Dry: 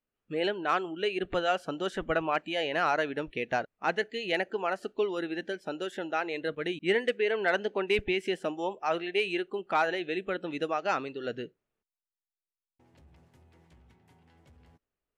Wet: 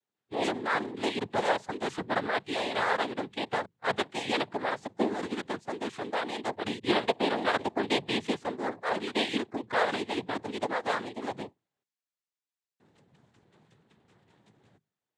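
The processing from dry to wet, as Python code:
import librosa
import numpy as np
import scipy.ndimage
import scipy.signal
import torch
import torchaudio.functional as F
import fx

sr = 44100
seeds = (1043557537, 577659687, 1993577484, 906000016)

y = fx.hum_notches(x, sr, base_hz=50, count=4)
y = fx.noise_vocoder(y, sr, seeds[0], bands=6)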